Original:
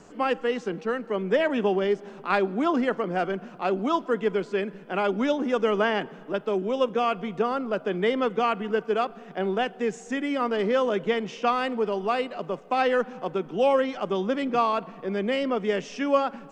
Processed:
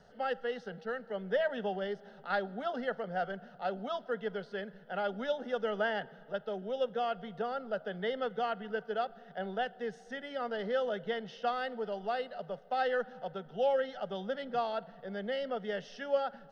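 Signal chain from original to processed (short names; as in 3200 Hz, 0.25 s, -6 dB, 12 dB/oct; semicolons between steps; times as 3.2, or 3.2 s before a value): fixed phaser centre 1600 Hz, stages 8; gain -6 dB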